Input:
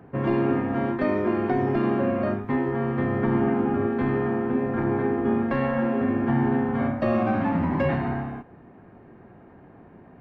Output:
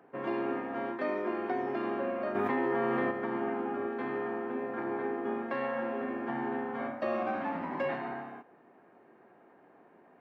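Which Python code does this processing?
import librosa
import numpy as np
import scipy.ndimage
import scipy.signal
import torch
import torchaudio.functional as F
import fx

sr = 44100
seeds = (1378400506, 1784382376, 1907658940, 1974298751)

y = scipy.signal.sosfilt(scipy.signal.butter(2, 380.0, 'highpass', fs=sr, output='sos'), x)
y = fx.env_flatten(y, sr, amount_pct=100, at=(2.34, 3.1), fade=0.02)
y = y * 10.0 ** (-6.0 / 20.0)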